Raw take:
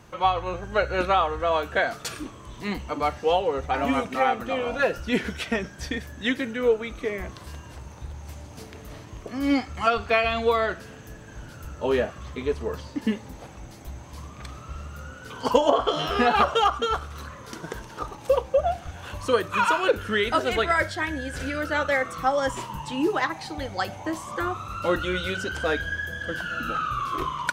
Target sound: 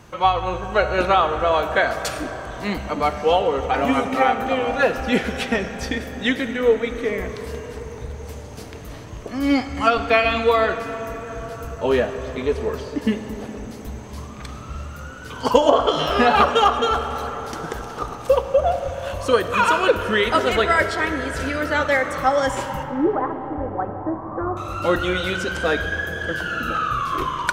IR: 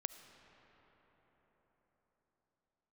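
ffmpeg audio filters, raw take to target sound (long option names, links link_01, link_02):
-filter_complex "[0:a]asettb=1/sr,asplit=3[link_01][link_02][link_03];[link_01]atrim=end=22.834[link_04];[link_02]atrim=start=22.83:end=24.57,asetpts=PTS-STARTPTS,afade=type=in:duration=0.004:curve=qsin,afade=type=out:start_time=1.736:duration=0.004:curve=qsin,lowpass=frequency=1100:width=0.5412,lowpass=frequency=1100:width=1.3066[link_05];[link_03]atrim=start=24.566[link_06];[link_04][link_05]acrossfade=duration=0.004:curve1=hsin:curve2=qsin[link_07];[link_07][link_06]acrossfade=duration=0.004:curve1=qsin:curve2=hsin[link_08];[1:a]atrim=start_sample=2205[link_09];[link_08][link_09]afir=irnorm=-1:irlink=0,volume=7dB"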